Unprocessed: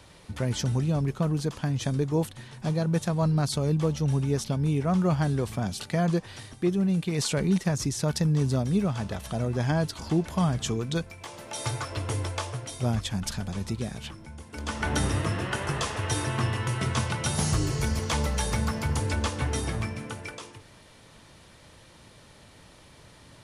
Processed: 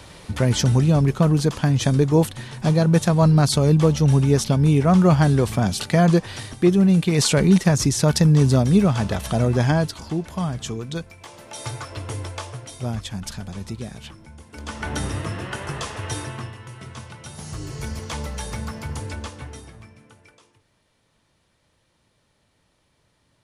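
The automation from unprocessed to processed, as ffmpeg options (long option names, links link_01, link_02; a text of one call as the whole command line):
ffmpeg -i in.wav -af "volume=16.5dB,afade=type=out:start_time=9.53:duration=0.54:silence=0.334965,afade=type=out:start_time=16.14:duration=0.41:silence=0.316228,afade=type=in:start_time=17.43:duration=0.43:silence=0.421697,afade=type=out:start_time=19.03:duration=0.69:silence=0.281838" out.wav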